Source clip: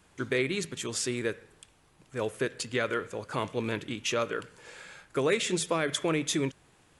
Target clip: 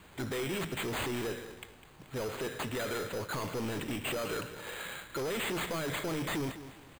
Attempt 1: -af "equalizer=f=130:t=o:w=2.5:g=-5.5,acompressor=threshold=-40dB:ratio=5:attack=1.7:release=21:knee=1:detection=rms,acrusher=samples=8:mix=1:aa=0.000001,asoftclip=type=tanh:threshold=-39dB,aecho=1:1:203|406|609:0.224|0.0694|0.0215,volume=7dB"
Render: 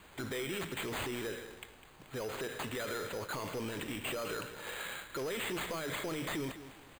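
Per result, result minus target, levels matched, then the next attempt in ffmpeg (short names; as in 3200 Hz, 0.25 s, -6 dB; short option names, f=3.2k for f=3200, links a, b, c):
compressor: peak gain reduction +6.5 dB; 125 Hz band -2.5 dB
-af "equalizer=f=130:t=o:w=2.5:g=-5.5,acompressor=threshold=-31dB:ratio=5:attack=1.7:release=21:knee=1:detection=rms,acrusher=samples=8:mix=1:aa=0.000001,asoftclip=type=tanh:threshold=-39dB,aecho=1:1:203|406|609:0.224|0.0694|0.0215,volume=7dB"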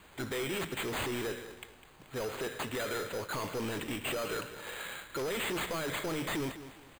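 125 Hz band -3.0 dB
-af "acompressor=threshold=-31dB:ratio=5:attack=1.7:release=21:knee=1:detection=rms,acrusher=samples=8:mix=1:aa=0.000001,asoftclip=type=tanh:threshold=-39dB,aecho=1:1:203|406|609:0.224|0.0694|0.0215,volume=7dB"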